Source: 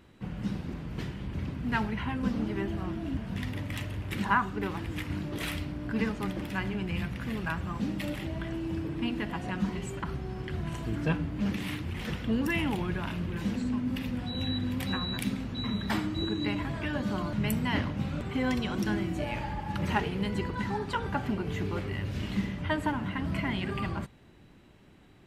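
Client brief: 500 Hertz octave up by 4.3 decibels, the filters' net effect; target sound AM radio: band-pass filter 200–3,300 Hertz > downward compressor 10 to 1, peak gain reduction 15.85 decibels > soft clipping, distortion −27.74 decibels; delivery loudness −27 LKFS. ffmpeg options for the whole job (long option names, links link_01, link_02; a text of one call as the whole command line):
ffmpeg -i in.wav -af "highpass=200,lowpass=3300,equalizer=frequency=500:width_type=o:gain=6,acompressor=threshold=-35dB:ratio=10,asoftclip=threshold=-26dB,volume=13dB" out.wav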